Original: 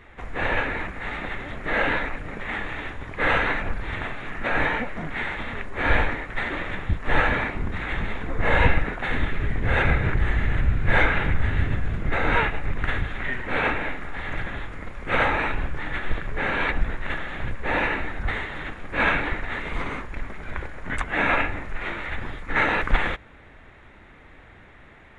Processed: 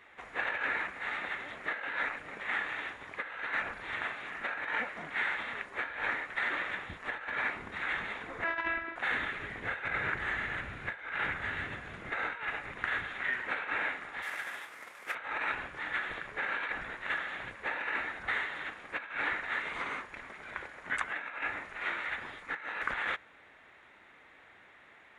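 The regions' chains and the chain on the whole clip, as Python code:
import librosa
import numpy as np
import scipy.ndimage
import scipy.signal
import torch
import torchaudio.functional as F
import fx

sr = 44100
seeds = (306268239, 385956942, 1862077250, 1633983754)

y = fx.chain(x, sr, fx.robotise(hz=331.0),
    fx.air_absorb(metres=220.0), at=(8.44, 8.96))
y = fx.chain(y, sr, fx.cvsd(bps=64000),
    fx.highpass(hz=580.0, slope=6), at=(14.22, 15.15))
y = fx.highpass(y, sr, hz=830.0, slope=6)
y = fx.dynamic_eq(y, sr, hz=1500.0, q=1.7, threshold_db=-37.0, ratio=4.0, max_db=5)
y = fx.over_compress(y, sr, threshold_db=-26.0, ratio=-0.5)
y = y * librosa.db_to_amplitude(-7.0)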